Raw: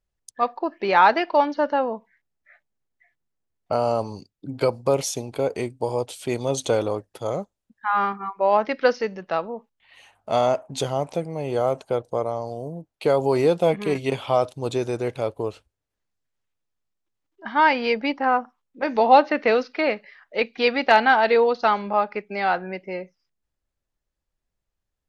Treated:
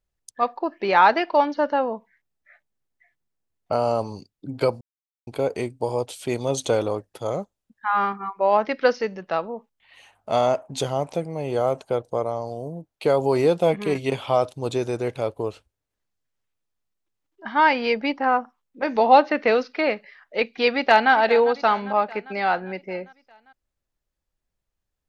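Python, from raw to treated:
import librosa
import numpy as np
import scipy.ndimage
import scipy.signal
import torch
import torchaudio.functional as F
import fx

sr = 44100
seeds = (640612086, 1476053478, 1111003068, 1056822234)

y = fx.echo_throw(x, sr, start_s=20.7, length_s=0.42, ms=400, feedback_pct=60, wet_db=-15.5)
y = fx.edit(y, sr, fx.silence(start_s=4.81, length_s=0.46), tone=tone)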